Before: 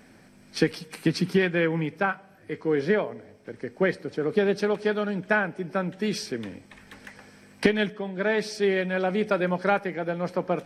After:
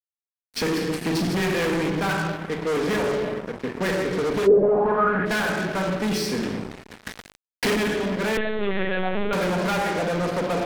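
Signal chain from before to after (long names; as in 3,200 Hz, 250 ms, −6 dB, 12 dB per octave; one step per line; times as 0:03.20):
rectangular room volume 1,300 cubic metres, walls mixed, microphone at 1.8 metres
fuzz pedal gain 28 dB, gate −37 dBFS
0:04.46–0:05.25: low-pass with resonance 410 Hz → 1,800 Hz, resonance Q 4.3
0:07.06–0:07.75: leveller curve on the samples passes 3
0:08.37–0:09.33: linear-prediction vocoder at 8 kHz pitch kept
level −8 dB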